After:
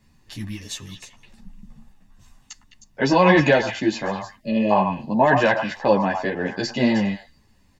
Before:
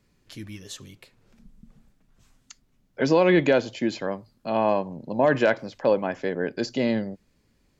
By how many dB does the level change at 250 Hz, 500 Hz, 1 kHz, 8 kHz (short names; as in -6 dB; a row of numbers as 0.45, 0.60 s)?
+4.5 dB, +1.5 dB, +7.5 dB, n/a